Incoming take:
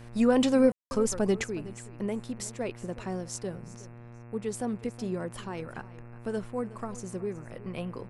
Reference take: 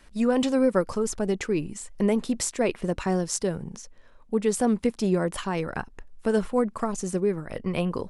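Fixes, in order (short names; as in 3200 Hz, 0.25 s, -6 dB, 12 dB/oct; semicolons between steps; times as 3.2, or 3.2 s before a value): de-hum 118.5 Hz, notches 23; room tone fill 0.72–0.91; inverse comb 0.367 s -17.5 dB; gain 0 dB, from 1.44 s +9.5 dB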